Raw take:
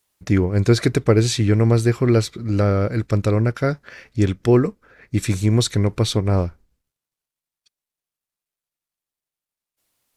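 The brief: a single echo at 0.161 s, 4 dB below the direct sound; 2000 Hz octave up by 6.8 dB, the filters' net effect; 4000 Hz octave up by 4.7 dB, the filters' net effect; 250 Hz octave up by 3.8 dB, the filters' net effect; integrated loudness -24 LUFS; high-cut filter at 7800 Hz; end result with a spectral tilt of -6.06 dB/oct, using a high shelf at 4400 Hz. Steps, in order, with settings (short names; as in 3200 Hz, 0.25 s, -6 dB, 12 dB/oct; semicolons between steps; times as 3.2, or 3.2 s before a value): LPF 7800 Hz; bell 250 Hz +5 dB; bell 2000 Hz +8 dB; bell 4000 Hz +7.5 dB; high shelf 4400 Hz -7.5 dB; echo 0.161 s -4 dB; gain -8 dB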